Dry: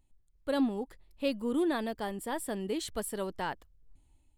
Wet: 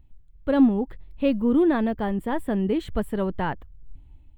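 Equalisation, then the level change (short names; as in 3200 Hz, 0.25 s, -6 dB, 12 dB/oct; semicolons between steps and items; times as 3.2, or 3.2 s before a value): tone controls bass +10 dB, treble -2 dB; band shelf 7700 Hz -16 dB; dynamic EQ 3800 Hz, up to -6 dB, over -57 dBFS, Q 1.1; +7.0 dB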